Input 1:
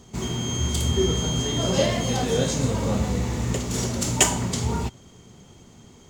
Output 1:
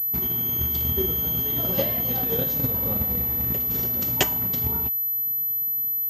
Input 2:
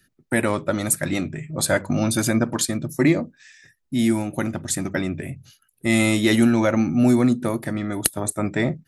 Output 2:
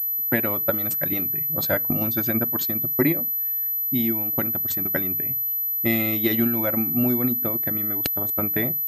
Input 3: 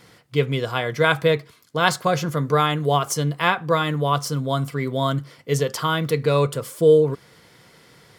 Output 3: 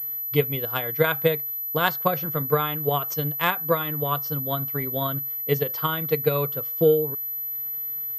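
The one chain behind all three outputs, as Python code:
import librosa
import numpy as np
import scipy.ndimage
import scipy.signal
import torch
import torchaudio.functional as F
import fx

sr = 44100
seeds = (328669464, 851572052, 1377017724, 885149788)

y = fx.transient(x, sr, attack_db=8, sustain_db=-3)
y = fx.pwm(y, sr, carrier_hz=12000.0)
y = y * librosa.db_to_amplitude(-7.5)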